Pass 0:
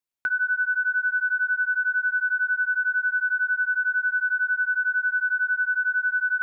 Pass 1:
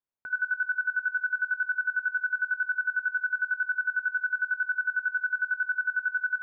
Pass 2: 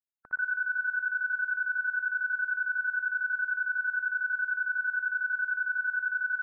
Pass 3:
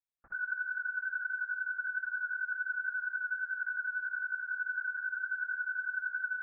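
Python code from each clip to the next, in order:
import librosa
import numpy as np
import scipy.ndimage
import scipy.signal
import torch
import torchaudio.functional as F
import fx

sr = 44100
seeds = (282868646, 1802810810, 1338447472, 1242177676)

y1 = scipy.signal.sosfilt(scipy.signal.butter(2, 1400.0, 'lowpass', fs=sr, output='sos'), x)
y1 = fx.level_steps(y1, sr, step_db=13)
y1 = F.gain(torch.from_numpy(y1), 1.5).numpy()
y2 = fx.bin_expand(y1, sr, power=3.0)
y2 = fx.echo_feedback(y2, sr, ms=61, feedback_pct=34, wet_db=-3.0)
y3 = fx.doubler(y2, sr, ms=21.0, db=-5.0)
y3 = fx.lpc_vocoder(y3, sr, seeds[0], excitation='whisper', order=8)
y3 = F.gain(torch.from_numpy(y3), -6.5).numpy()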